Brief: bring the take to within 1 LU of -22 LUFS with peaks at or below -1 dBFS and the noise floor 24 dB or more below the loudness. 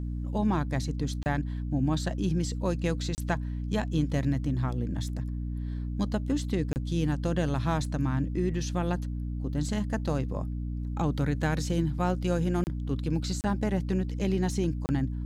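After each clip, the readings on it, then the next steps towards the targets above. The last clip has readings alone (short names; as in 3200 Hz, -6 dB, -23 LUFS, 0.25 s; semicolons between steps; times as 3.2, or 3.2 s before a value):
dropouts 6; longest dropout 29 ms; hum 60 Hz; harmonics up to 300 Hz; hum level -30 dBFS; loudness -30.0 LUFS; peak -15.0 dBFS; loudness target -22.0 LUFS
-> interpolate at 1.23/3.15/6.73/12.64/13.41/14.86, 29 ms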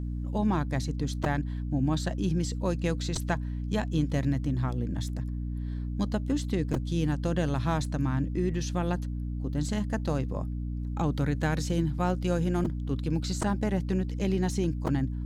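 dropouts 0; hum 60 Hz; harmonics up to 300 Hz; hum level -30 dBFS
-> notches 60/120/180/240/300 Hz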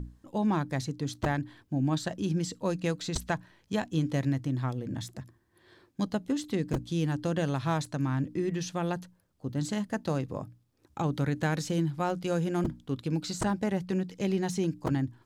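hum none; loudness -31.5 LUFS; peak -15.5 dBFS; loudness target -22.0 LUFS
-> gain +9.5 dB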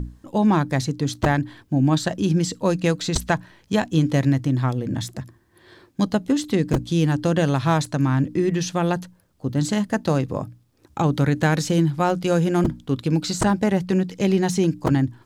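loudness -22.0 LUFS; peak -6.0 dBFS; noise floor -60 dBFS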